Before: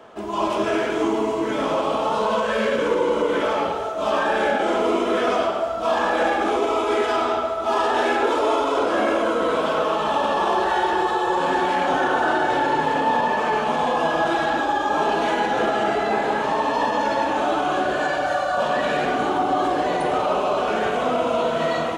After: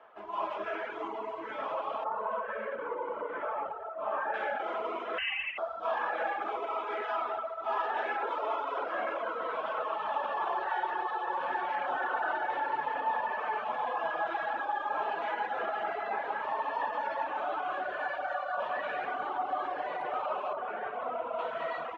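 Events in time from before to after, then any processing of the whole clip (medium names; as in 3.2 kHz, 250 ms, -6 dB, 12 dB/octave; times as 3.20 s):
2.04–4.34 s: low-pass 1.7 kHz
5.18–5.58 s: frequency inversion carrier 3.3 kHz
20.53–21.39 s: low-pass 1.6 kHz 6 dB/octave
whole clip: low-pass 3.8 kHz 12 dB/octave; reverb removal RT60 0.78 s; three-band isolator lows -18 dB, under 580 Hz, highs -14 dB, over 2.6 kHz; trim -7 dB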